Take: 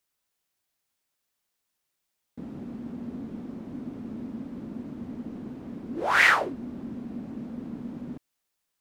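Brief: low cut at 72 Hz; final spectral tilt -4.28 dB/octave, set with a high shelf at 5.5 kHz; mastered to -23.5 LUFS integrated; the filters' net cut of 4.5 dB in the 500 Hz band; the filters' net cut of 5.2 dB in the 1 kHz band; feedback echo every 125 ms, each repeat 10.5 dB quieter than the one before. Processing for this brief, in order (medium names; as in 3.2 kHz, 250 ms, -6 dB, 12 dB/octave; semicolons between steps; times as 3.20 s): high-pass 72 Hz; peaking EQ 500 Hz -4 dB; peaking EQ 1 kHz -6 dB; treble shelf 5.5 kHz -5.5 dB; feedback delay 125 ms, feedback 30%, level -10.5 dB; trim +8.5 dB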